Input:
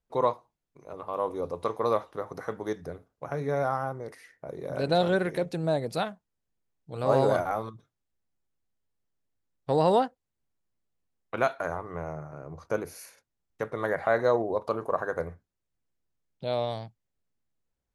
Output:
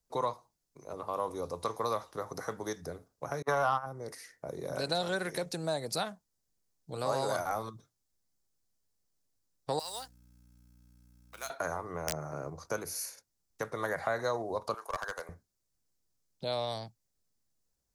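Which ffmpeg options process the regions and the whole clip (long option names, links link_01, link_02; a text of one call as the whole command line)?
ffmpeg -i in.wav -filter_complex "[0:a]asettb=1/sr,asplit=3[link_01][link_02][link_03];[link_01]atrim=end=3.424[link_04];[link_02]atrim=start=3.42:end=3.86,asetpts=PTS-STARTPTS,afade=type=in:duration=0.004:curve=qsin,afade=type=out:start_time=0.436:duration=0.004:curve=qsin,agate=range=-43dB:threshold=-30dB:ratio=16:release=100:detection=peak,equalizer=frequency=1100:width_type=o:width=1.3:gain=15,acontrast=68[link_05];[link_03]atrim=start=3.856[link_06];[link_04][link_05]acrossfade=duration=0.004:curve1=hsin:curve2=qsin[link_07];[link_07][link_06]acrossfade=duration=0.004:curve1=qsin:curve2=hsin,asettb=1/sr,asplit=3[link_08][link_09][link_10];[link_08]atrim=end=9.794[link_11];[link_09]atrim=start=9.79:end=11.5,asetpts=PTS-STARTPTS,afade=type=in:duration=0.004:curve=qsin,afade=type=out:start_time=1.706:duration=0.004:curve=qsin,aderivative,aeval=exprs='val(0)+0.001*(sin(2*PI*60*n/s)+sin(2*PI*2*60*n/s)/2+sin(2*PI*3*60*n/s)/3+sin(2*PI*4*60*n/s)/4+sin(2*PI*5*60*n/s)/5)':channel_layout=same,acrusher=bits=4:mode=log:mix=0:aa=0.000001[link_12];[link_10]atrim=start=11.496[link_13];[link_11][link_12]acrossfade=duration=0.004:curve1=hsin:curve2=qsin[link_14];[link_14][link_13]acrossfade=duration=0.004:curve1=qsin:curve2=hsin,asettb=1/sr,asplit=3[link_15][link_16][link_17];[link_15]atrim=end=12.074[link_18];[link_16]atrim=start=12.07:end=12.5,asetpts=PTS-STARTPTS,afade=type=in:duration=0.004:curve=qsin,afade=type=out:start_time=0.426:duration=0.004:curve=qsin,highpass=53,acontrast=40,aeval=exprs='(mod(9.44*val(0)+1,2)-1)/9.44':channel_layout=same[link_19];[link_17]atrim=start=12.496[link_20];[link_18][link_19]acrossfade=duration=0.004:curve1=hsin:curve2=qsin[link_21];[link_21][link_20]acrossfade=duration=0.004:curve1=qsin:curve2=hsin,asettb=1/sr,asplit=3[link_22][link_23][link_24];[link_22]atrim=end=14.744[link_25];[link_23]atrim=start=14.74:end=15.29,asetpts=PTS-STARTPTS,afade=type=in:duration=0.004:curve=qsin,afade=type=out:start_time=0.546:duration=0.004:curve=qsin,highpass=980,aeval=exprs='clip(val(0),-1,0.0237)':channel_layout=same[link_26];[link_24]atrim=start=15.286[link_27];[link_25][link_26]acrossfade=duration=0.004:curve1=hsin:curve2=qsin[link_28];[link_28][link_27]acrossfade=duration=0.004:curve1=qsin:curve2=hsin,highshelf=frequency=3900:width_type=q:width=1.5:gain=8,acrossover=split=190|750[link_29][link_30][link_31];[link_29]acompressor=threshold=-47dB:ratio=4[link_32];[link_30]acompressor=threshold=-38dB:ratio=4[link_33];[link_31]acompressor=threshold=-31dB:ratio=4[link_34];[link_32][link_33][link_34]amix=inputs=3:normalize=0" out.wav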